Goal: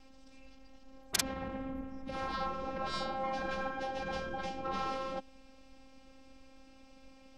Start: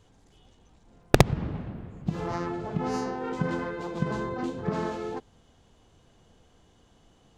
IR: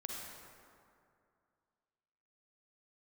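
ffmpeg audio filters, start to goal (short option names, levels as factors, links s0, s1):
-af "afftfilt=real='hypot(re,im)*cos(PI*b)':imag='0':win_size=512:overlap=0.75,asetrate=34006,aresample=44100,atempo=1.29684,afftfilt=real='re*lt(hypot(re,im),0.0708)':imag='im*lt(hypot(re,im),0.0708)':win_size=1024:overlap=0.75,volume=2.24"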